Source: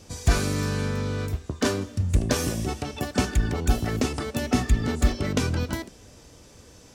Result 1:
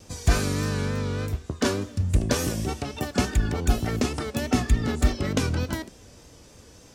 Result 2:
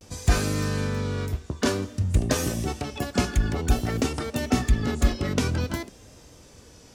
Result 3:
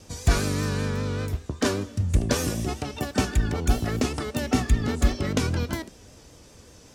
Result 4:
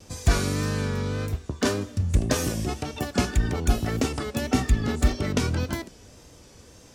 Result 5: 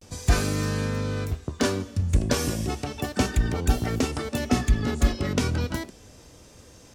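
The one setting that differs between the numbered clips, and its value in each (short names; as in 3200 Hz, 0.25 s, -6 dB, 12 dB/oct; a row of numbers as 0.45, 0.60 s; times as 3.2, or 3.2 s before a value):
vibrato, rate: 3.4, 0.54, 5.1, 1.8, 0.34 Hz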